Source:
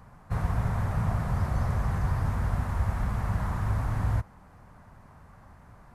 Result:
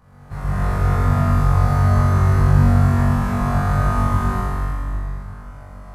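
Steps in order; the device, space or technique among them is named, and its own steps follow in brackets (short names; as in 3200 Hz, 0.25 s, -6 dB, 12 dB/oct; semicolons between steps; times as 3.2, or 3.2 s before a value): tunnel (flutter echo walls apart 3.6 m, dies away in 1.4 s; reverb RT60 2.7 s, pre-delay 0.108 s, DRR -7 dB); gain -3.5 dB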